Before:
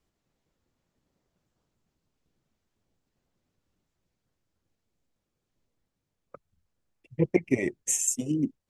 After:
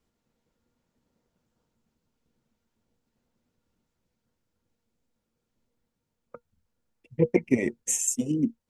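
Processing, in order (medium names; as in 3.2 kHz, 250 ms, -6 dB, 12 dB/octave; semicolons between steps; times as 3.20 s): small resonant body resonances 230/480/920/1400 Hz, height 9 dB, ringing for 95 ms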